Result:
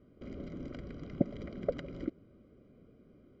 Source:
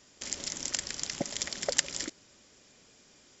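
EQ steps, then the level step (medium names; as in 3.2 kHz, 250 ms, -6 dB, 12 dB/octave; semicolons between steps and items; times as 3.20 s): boxcar filter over 50 samples; distance through air 330 m; +8.5 dB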